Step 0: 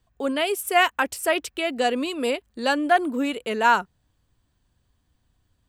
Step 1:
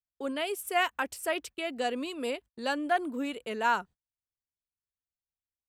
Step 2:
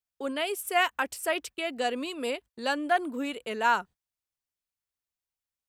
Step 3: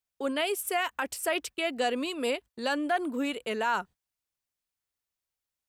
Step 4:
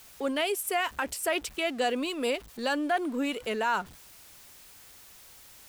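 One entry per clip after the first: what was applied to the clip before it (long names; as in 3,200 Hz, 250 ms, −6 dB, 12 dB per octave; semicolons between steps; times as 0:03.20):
noise gate −38 dBFS, range −30 dB; level −8.5 dB
low-shelf EQ 420 Hz −3.5 dB; level +3 dB
brickwall limiter −20.5 dBFS, peak gain reduction 8 dB; level +2 dB
converter with a step at zero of −44 dBFS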